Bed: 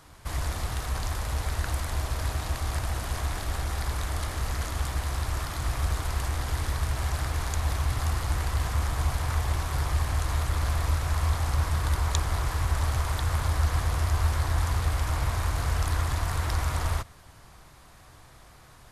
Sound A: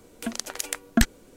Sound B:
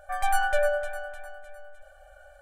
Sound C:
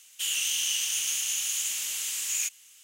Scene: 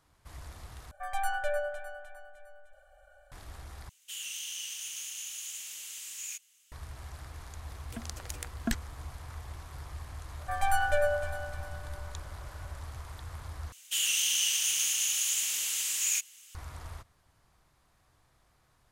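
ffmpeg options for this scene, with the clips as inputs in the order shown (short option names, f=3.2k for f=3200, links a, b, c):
-filter_complex "[2:a]asplit=2[a][b];[3:a]asplit=2[c][d];[0:a]volume=-16dB,asplit=4[e][f][g][h];[e]atrim=end=0.914[i];[a]atrim=end=2.41,asetpts=PTS-STARTPTS,volume=-7.5dB[j];[f]atrim=start=3.316:end=3.894[k];[c]atrim=end=2.83,asetpts=PTS-STARTPTS,volume=-11dB[l];[g]atrim=start=6.716:end=13.724[m];[d]atrim=end=2.83[n];[h]atrim=start=16.546[o];[1:a]atrim=end=1.36,asetpts=PTS-STARTPTS,volume=-11.5dB,afade=t=in:d=0.004:c=hsin,afade=t=out:st=1.356:d=0.004:c=hsin,adelay=339570S[p];[b]atrim=end=2.41,asetpts=PTS-STARTPTS,volume=-3dB,afade=t=in:d=0.004:c=hsin,afade=t=out:st=2.406:d=0.004:c=hsin,adelay=10390[q];[i][j]acrossfade=d=0.004:c1=hsin:c2=hsin[r];[r][k]acrossfade=d=0.004:c1=hsin:c2=hsin[s];[s][l]acrossfade=d=0.004:c1=hsin:c2=hsin[t];[t][m]acrossfade=d=0.004:c1=hsin:c2=hsin[u];[u][n]acrossfade=d=0.004:c1=hsin:c2=hsin[v];[v][o]acrossfade=d=0.004:c1=hsin:c2=hsin[w];[w][p][q]amix=inputs=3:normalize=0"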